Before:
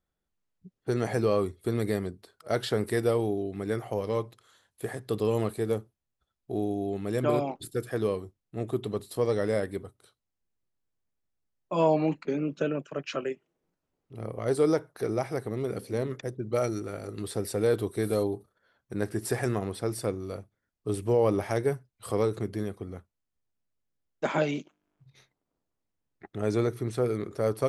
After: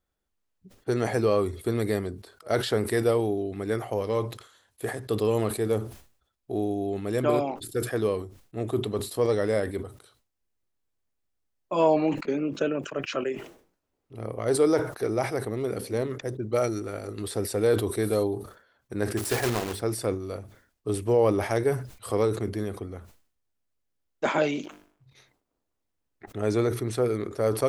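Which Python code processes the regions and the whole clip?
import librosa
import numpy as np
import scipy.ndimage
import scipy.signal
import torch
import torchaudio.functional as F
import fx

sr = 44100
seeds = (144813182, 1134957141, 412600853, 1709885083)

y = fx.chain(x, sr, fx.block_float(bits=3),
    fx.hum_notches(base_hz=50, count=10), at=(19.17, 19.82))
y = fx.peak_eq(y, sr, hz=160.0, db=-7.5, octaves=0.55)
y = fx.sustainer(y, sr, db_per_s=110.0)
y = y * 10.0 ** (2.5 / 20.0)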